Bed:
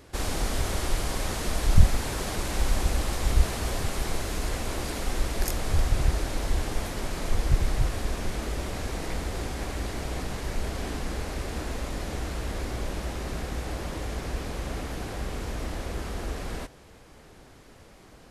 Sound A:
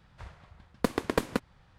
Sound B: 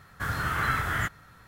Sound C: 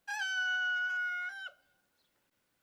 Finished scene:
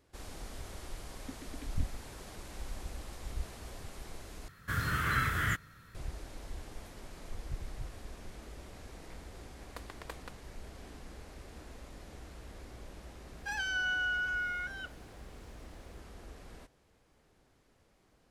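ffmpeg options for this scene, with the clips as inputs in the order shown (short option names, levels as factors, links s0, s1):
-filter_complex "[1:a]asplit=2[s0][s1];[0:a]volume=0.141[s2];[s0]asplit=3[s3][s4][s5];[s3]bandpass=f=270:t=q:w=8,volume=1[s6];[s4]bandpass=f=2290:t=q:w=8,volume=0.501[s7];[s5]bandpass=f=3010:t=q:w=8,volume=0.355[s8];[s6][s7][s8]amix=inputs=3:normalize=0[s9];[2:a]equalizer=f=800:t=o:w=0.86:g=-11.5[s10];[s1]highpass=730[s11];[s2]asplit=2[s12][s13];[s12]atrim=end=4.484[s14];[s10]atrim=end=1.47,asetpts=PTS-STARTPTS,volume=0.841[s15];[s13]atrim=start=5.946[s16];[s9]atrim=end=1.78,asetpts=PTS-STARTPTS,volume=0.299,afade=t=in:d=0.004:c=hsin,afade=t=out:st=1.776:d=0.004:c=hsin,adelay=440[s17];[s11]atrim=end=1.78,asetpts=PTS-STARTPTS,volume=0.211,afade=t=in:d=0.004:c=hsin,afade=t=out:st=1.776:d=0.004:c=hsin,adelay=8920[s18];[3:a]atrim=end=2.62,asetpts=PTS-STARTPTS,afade=t=in:d=0.004:c=hsin,afade=t=out:st=2.616:d=0.004:c=hsin,adelay=13380[s19];[s14][s15]acrossfade=d=0.004:c1=hsin:c2=hsin[s20];[s20][s16]acrossfade=d=0.004:c1=hsin:c2=hsin[s21];[s21][s17][s18][s19]amix=inputs=4:normalize=0"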